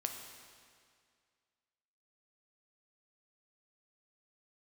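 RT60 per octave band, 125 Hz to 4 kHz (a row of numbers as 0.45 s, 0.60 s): 2.1 s, 2.1 s, 2.1 s, 2.1 s, 2.1 s, 1.9 s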